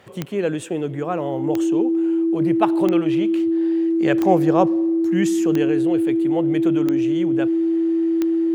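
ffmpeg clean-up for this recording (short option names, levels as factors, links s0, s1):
-af "adeclick=t=4,bandreject=f=330:w=30"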